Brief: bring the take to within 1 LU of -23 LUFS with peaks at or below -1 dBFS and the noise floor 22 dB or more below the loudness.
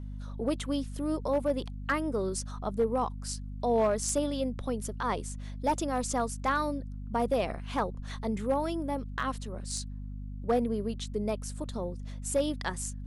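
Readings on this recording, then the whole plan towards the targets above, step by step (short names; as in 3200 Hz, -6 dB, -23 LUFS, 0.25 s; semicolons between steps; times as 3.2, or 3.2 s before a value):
clipped 0.4%; flat tops at -20.0 dBFS; hum 50 Hz; harmonics up to 250 Hz; hum level -37 dBFS; loudness -32.0 LUFS; peak -20.0 dBFS; loudness target -23.0 LUFS
-> clip repair -20 dBFS; de-hum 50 Hz, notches 5; gain +9 dB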